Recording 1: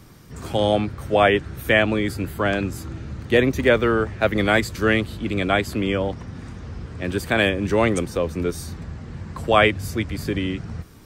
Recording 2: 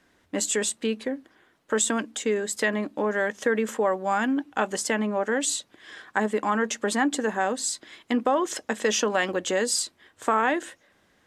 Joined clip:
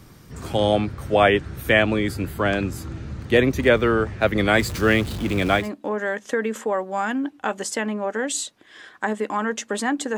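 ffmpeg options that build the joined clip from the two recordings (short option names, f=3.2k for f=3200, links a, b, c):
-filter_complex "[0:a]asettb=1/sr,asplit=3[a][b][c];[a]atrim=end=4.594[d];[b]atrim=start=4.59:end=5.7,asetpts=PTS-STARTPTS,afade=t=in:d=0.004:c=qsin,afade=t=out:st=1.106:d=0.004:c=qsin,aeval=exprs='val(0)+0.5*0.0299*sgn(val(0))':c=same[e];[c]atrim=start=5.696[f];[d][e]acrossfade=d=0.004:c1=hsin:c2=qsin[g];[g][f]acrossfade=d=0.004:c1=qsin:c2=hsin,apad=whole_dur=10.17,atrim=end=10.17,atrim=end=5.7,asetpts=PTS-STARTPTS[h];[1:a]atrim=start=2.67:end=7.3,asetpts=PTS-STARTPTS[i];[h][i]acrossfade=d=0.16:c1=tri:c2=tri"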